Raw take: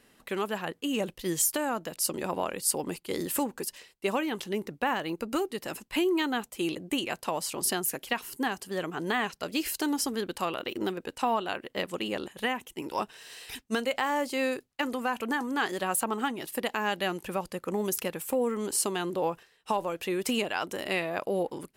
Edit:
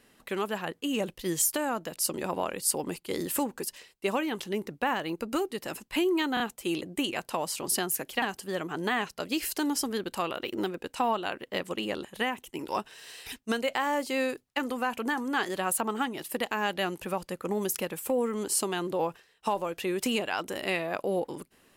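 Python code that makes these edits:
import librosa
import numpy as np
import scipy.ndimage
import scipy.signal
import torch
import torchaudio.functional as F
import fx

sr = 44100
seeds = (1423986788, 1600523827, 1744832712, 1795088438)

y = fx.edit(x, sr, fx.stutter(start_s=6.34, slice_s=0.03, count=3),
    fx.cut(start_s=8.16, length_s=0.29), tone=tone)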